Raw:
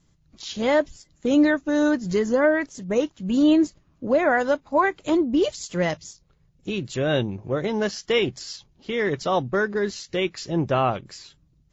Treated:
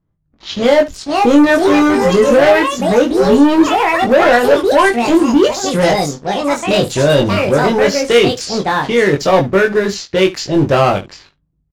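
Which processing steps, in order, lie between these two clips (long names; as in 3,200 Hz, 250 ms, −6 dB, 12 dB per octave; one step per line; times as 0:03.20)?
delay with pitch and tempo change per echo 638 ms, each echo +5 semitones, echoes 2, each echo −6 dB
dynamic equaliser 540 Hz, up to +4 dB, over −32 dBFS, Q 6.2
leveller curve on the samples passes 3
on a send: ambience of single reflections 21 ms −3.5 dB, 72 ms −16.5 dB
on the sum: low-pass that shuts in the quiet parts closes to 1,300 Hz, open at −11.5 dBFS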